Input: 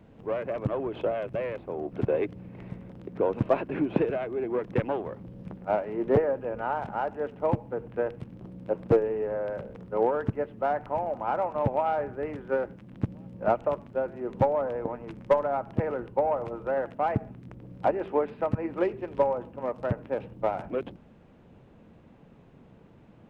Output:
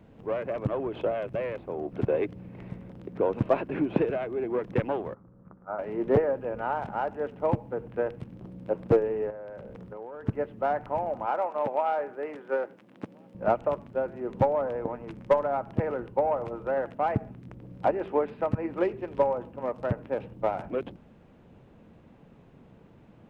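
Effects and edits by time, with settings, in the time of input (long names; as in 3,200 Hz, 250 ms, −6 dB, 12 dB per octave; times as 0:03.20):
0:05.14–0:05.79: transistor ladder low-pass 1,400 Hz, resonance 70%
0:09.30–0:10.28: downward compressor, threshold −38 dBFS
0:11.26–0:13.35: high-pass filter 350 Hz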